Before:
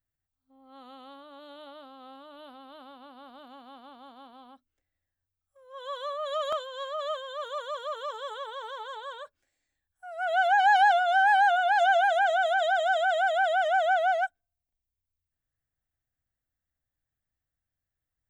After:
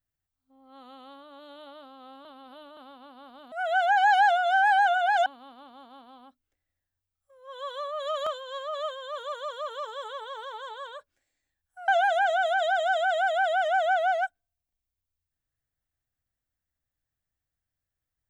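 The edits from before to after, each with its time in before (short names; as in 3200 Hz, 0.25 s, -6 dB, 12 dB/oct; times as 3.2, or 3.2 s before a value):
2.25–2.77 reverse
10.14–11.88 move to 3.52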